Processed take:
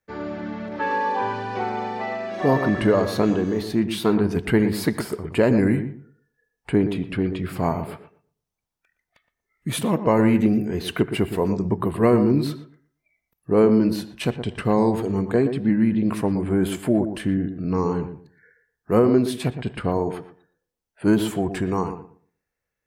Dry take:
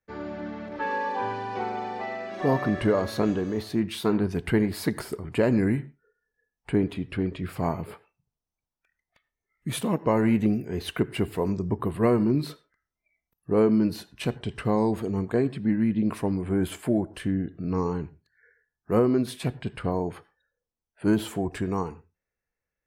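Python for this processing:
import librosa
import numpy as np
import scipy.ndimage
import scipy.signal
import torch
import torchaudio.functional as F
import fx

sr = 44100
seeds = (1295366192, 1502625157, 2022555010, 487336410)

p1 = fx.low_shelf(x, sr, hz=65.0, db=-5.5)
p2 = p1 + fx.echo_filtered(p1, sr, ms=118, feedback_pct=22, hz=1300.0, wet_db=-9, dry=0)
y = p2 * 10.0 ** (4.5 / 20.0)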